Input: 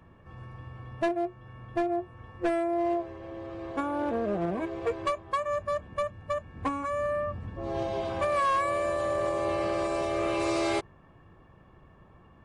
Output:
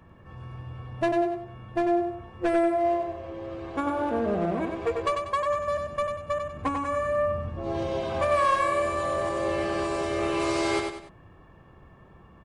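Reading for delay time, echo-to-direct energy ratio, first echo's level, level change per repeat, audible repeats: 95 ms, −4.5 dB, −5.0 dB, −8.5 dB, 3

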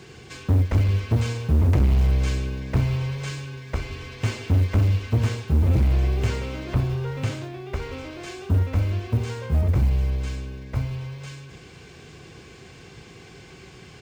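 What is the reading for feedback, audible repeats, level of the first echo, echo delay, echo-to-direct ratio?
20%, 1, −20.5 dB, 153 ms, −20.5 dB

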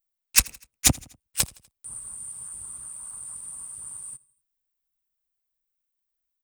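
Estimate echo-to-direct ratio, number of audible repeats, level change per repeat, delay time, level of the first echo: −22.5 dB, 2, −6.0 dB, 82 ms, −23.5 dB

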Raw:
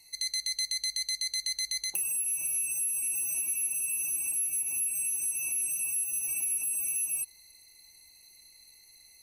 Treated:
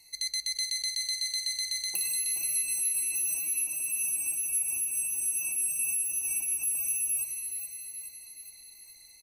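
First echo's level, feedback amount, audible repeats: −7.0 dB, 53%, 6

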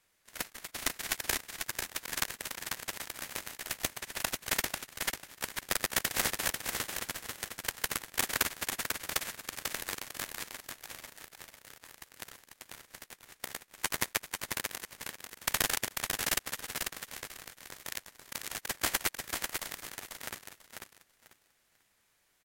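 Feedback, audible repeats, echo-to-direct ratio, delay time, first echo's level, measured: 20%, 3, −5.0 dB, 493 ms, −5.0 dB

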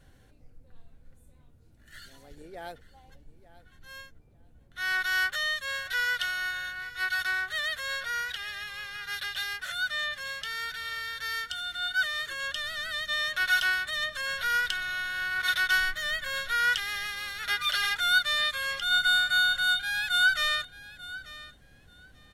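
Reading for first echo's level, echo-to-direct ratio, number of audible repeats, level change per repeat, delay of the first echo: −17.5 dB, −17.5 dB, 2, −15.5 dB, 889 ms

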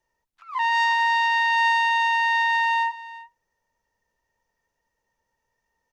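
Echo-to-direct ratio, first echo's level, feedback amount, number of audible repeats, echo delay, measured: −17.5 dB, −17.5 dB, repeats not evenly spaced, 1, 355 ms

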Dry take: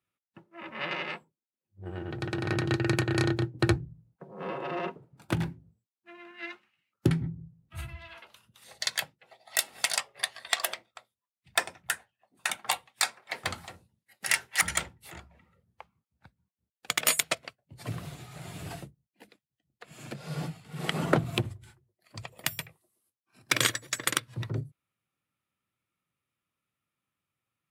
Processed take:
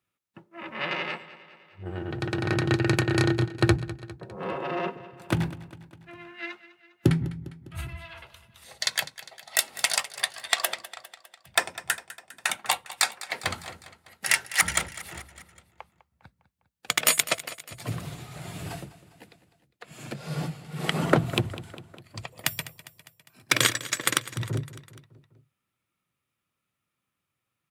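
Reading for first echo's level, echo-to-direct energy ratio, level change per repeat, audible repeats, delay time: −16.5 dB, −14.5 dB, −4.5 dB, 4, 202 ms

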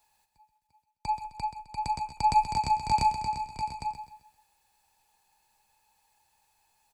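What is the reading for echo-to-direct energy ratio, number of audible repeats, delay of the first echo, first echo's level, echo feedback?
−9.0 dB, 3, 130 ms, −9.5 dB, 36%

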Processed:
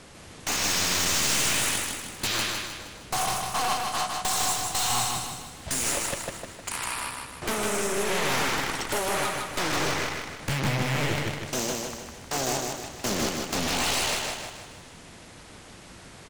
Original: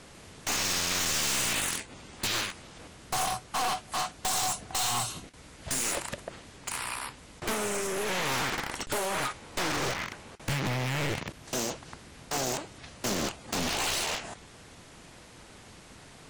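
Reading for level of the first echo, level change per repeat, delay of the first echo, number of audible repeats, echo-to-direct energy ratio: −3.5 dB, −6.5 dB, 155 ms, 5, −2.5 dB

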